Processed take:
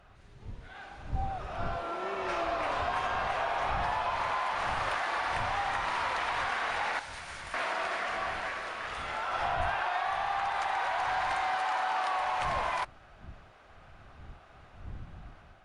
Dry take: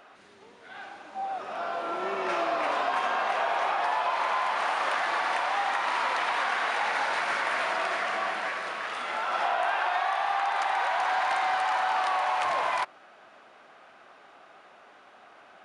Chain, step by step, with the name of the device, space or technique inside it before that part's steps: 6.99–7.54 s: pre-emphasis filter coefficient 0.8; smartphone video outdoors (wind noise 92 Hz -41 dBFS; level rider gain up to 4 dB; trim -8 dB; AAC 64 kbps 44.1 kHz)

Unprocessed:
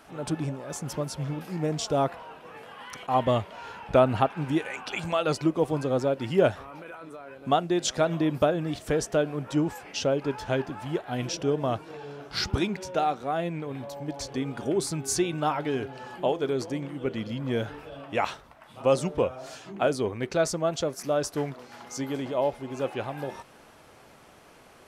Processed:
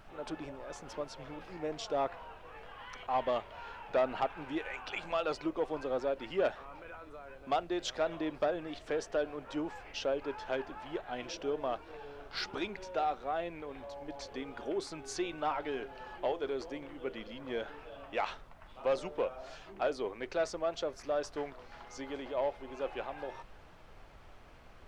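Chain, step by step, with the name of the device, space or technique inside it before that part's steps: aircraft cabin announcement (band-pass 390–4100 Hz; saturation -17.5 dBFS, distortion -16 dB; brown noise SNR 18 dB); trim -5 dB

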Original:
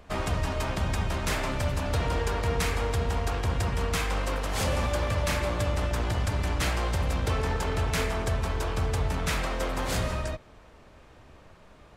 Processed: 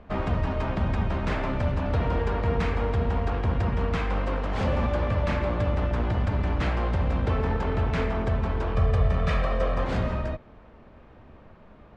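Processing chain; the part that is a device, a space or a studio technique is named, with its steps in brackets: 8.75–9.84 s: comb 1.7 ms, depth 66%; phone in a pocket (low-pass 3.5 kHz 12 dB/octave; peaking EQ 220 Hz +6 dB 0.35 oct; treble shelf 2.1 kHz -9 dB); trim +2.5 dB

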